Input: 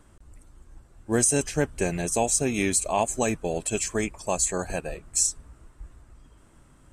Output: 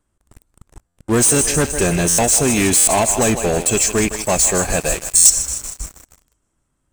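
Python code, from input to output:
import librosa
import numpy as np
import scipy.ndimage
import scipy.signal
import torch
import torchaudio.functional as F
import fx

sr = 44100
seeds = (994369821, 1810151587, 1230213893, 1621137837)

y = fx.high_shelf(x, sr, hz=6300.0, db=6.5)
y = fx.echo_thinned(y, sr, ms=157, feedback_pct=59, hz=320.0, wet_db=-13)
y = fx.leveller(y, sr, passes=5)
y = fx.high_shelf(y, sr, hz=3000.0, db=8.0, at=(4.81, 5.3))
y = fx.buffer_glitch(y, sr, at_s=(0.87, 2.08, 2.77, 5.15), block=512, repeats=8)
y = F.gain(torch.from_numpy(y), -5.5).numpy()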